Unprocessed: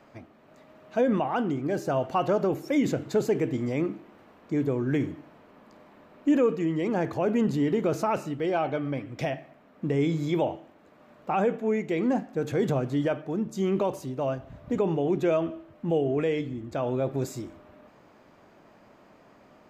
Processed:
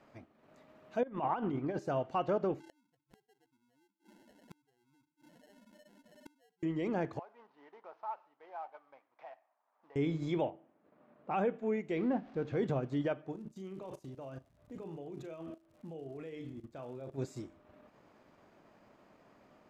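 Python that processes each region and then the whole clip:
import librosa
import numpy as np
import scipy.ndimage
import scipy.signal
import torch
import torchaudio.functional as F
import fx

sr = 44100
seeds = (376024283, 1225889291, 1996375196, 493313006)

y = fx.chain(x, sr, fx.lowpass(hz=3900.0, slope=12),
    fx.over_compress(threshold_db=-28.0, ratio=-0.5),
    fx.peak_eq(hz=980.0, db=6.0, octaves=0.58), at=(1.03, 1.79))
y = fx.chain(y, sr, fx.spec_expand(power=3.6),
    fx.sample_hold(seeds[0], rate_hz=1200.0, jitter_pct=0),
    fx.gate_flip(shuts_db=-32.0, range_db=-38), at=(2.6, 6.63))
y = fx.chain(y, sr, fx.cvsd(bps=32000),
    fx.ladder_bandpass(hz=1000.0, resonance_pct=60), at=(7.19, 9.96))
y = fx.chain(y, sr, fx.highpass(hz=130.0, slope=12),
    fx.spacing_loss(db_at_10k=32), at=(10.5, 11.31))
y = fx.chain(y, sr, fx.zero_step(step_db=-40.0),
    fx.air_absorb(metres=180.0), at=(11.97, 12.57))
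y = fx.level_steps(y, sr, step_db=19, at=(13.31, 17.17), fade=0.02)
y = fx.dmg_crackle(y, sr, seeds[1], per_s=130.0, level_db=-50.0, at=(13.31, 17.17), fade=0.02)
y = fx.doubler(y, sr, ms=37.0, db=-10, at=(13.31, 17.17), fade=0.02)
y = fx.transient(y, sr, attack_db=-1, sustain_db=-6)
y = fx.env_lowpass_down(y, sr, base_hz=1100.0, full_db=-15.0)
y = y * 10.0 ** (-7.0 / 20.0)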